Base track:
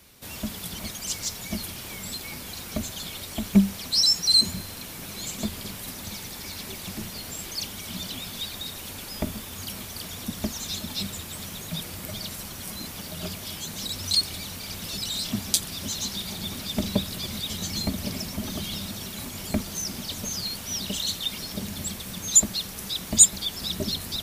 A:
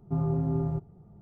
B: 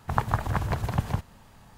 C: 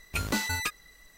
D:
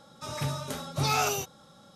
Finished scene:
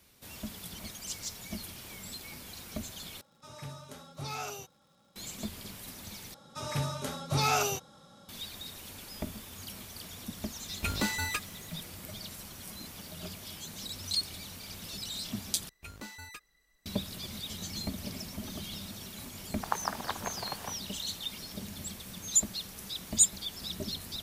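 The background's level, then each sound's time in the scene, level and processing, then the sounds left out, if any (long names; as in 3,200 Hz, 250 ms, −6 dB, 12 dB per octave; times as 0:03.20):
base track −8.5 dB
0:03.21: overwrite with D −12 dB + surface crackle 210 per second −46 dBFS
0:06.34: overwrite with D −1 dB
0:10.69: mix in C −2.5 dB + notch filter 5,500 Hz, Q 20
0:15.69: overwrite with C −16 dB
0:19.54: mix in B −5 dB + high-pass filter 440 Hz
not used: A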